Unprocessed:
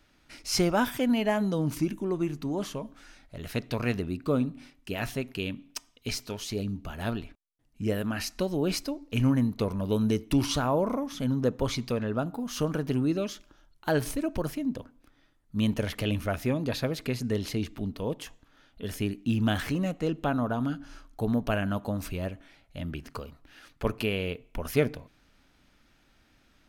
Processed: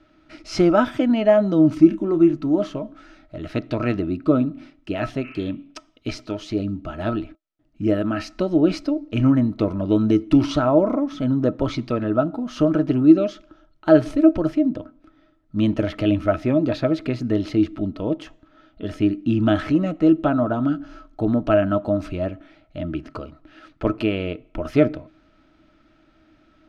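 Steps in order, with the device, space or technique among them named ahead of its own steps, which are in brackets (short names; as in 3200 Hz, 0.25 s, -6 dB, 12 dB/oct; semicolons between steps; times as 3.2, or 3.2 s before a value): inside a cardboard box (LPF 4100 Hz 12 dB/oct; small resonant body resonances 320/620/1300 Hz, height 16 dB, ringing for 85 ms); 5.26–5.47 spectral repair 970–3100 Hz; bell 130 Hz +2.5 dB 1.9 oct; 1.82–2.34 doubler 30 ms -11 dB; gain +2 dB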